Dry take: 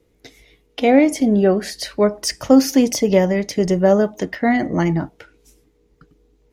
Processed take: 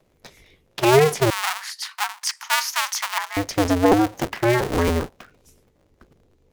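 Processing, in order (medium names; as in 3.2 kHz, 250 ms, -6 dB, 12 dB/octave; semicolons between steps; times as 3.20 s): cycle switcher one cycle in 2, inverted; 1.30–3.37 s: elliptic high-pass 940 Hz, stop band 70 dB; trim -2 dB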